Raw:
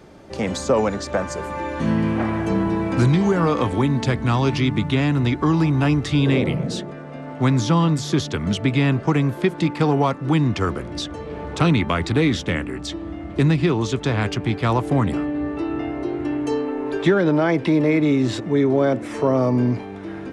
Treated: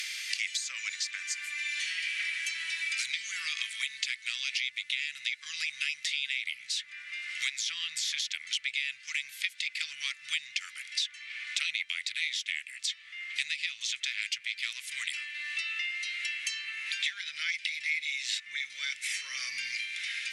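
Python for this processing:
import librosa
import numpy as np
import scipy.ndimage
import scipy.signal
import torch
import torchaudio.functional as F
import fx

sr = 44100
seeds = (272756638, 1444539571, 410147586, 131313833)

y = fx.cheby_harmonics(x, sr, harmonics=(2,), levels_db=(-22,), full_scale_db=-7.5)
y = scipy.signal.sosfilt(scipy.signal.ellip(4, 1.0, 60, 2100.0, 'highpass', fs=sr, output='sos'), y)
y = fx.band_squash(y, sr, depth_pct=100)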